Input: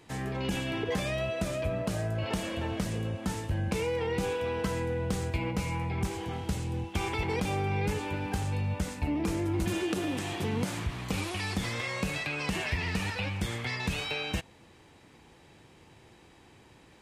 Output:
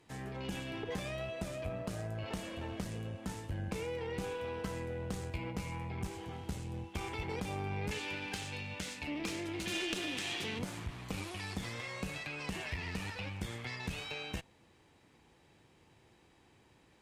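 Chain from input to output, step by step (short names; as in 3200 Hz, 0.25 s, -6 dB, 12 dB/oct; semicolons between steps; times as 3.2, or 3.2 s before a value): 7.91–10.59 weighting filter D; tube stage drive 18 dB, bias 0.75; gain -4 dB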